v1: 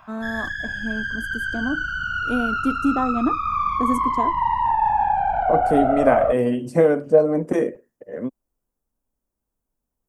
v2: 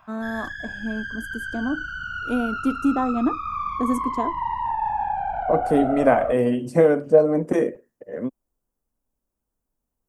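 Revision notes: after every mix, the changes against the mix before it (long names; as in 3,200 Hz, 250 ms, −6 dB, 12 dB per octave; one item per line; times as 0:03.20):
background −5.5 dB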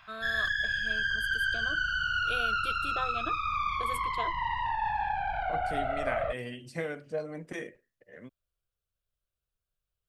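first voice: add phaser with its sweep stopped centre 1,300 Hz, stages 8
second voice −11.0 dB
master: add octave-band graphic EQ 250/500/1,000/2,000/4,000 Hz −9/−7/−6/+7/+11 dB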